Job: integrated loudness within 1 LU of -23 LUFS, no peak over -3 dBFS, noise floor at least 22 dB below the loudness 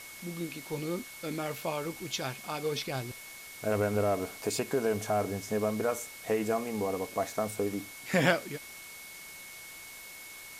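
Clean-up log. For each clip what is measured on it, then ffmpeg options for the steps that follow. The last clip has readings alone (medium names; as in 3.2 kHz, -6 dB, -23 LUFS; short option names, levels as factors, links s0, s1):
steady tone 2.2 kHz; tone level -48 dBFS; noise floor -47 dBFS; noise floor target -55 dBFS; loudness -32.5 LUFS; peak level -11.0 dBFS; loudness target -23.0 LUFS
-> -af "bandreject=f=2200:w=30"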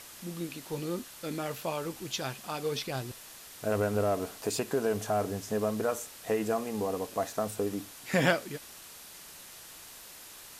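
steady tone not found; noise floor -49 dBFS; noise floor target -55 dBFS
-> -af "afftdn=nr=6:nf=-49"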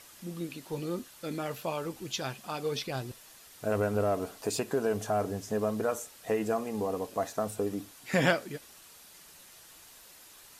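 noise floor -54 dBFS; noise floor target -55 dBFS
-> -af "afftdn=nr=6:nf=-54"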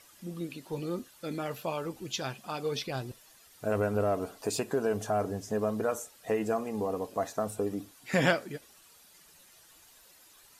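noise floor -58 dBFS; loudness -32.5 LUFS; peak level -11.5 dBFS; loudness target -23.0 LUFS
-> -af "volume=2.99,alimiter=limit=0.708:level=0:latency=1"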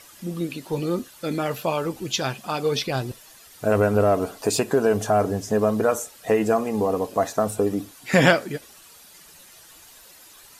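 loudness -23.5 LUFS; peak level -3.0 dBFS; noise floor -49 dBFS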